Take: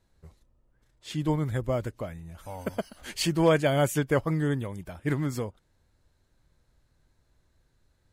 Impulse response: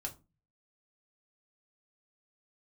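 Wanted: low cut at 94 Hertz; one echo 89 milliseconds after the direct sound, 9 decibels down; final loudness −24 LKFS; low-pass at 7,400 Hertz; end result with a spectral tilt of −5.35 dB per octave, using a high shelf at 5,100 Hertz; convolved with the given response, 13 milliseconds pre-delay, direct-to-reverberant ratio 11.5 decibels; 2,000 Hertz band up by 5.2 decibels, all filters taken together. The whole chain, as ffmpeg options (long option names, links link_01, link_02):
-filter_complex "[0:a]highpass=94,lowpass=7400,equalizer=frequency=2000:width_type=o:gain=6,highshelf=frequency=5100:gain=6.5,aecho=1:1:89:0.355,asplit=2[link_01][link_02];[1:a]atrim=start_sample=2205,adelay=13[link_03];[link_02][link_03]afir=irnorm=-1:irlink=0,volume=-10.5dB[link_04];[link_01][link_04]amix=inputs=2:normalize=0,volume=2.5dB"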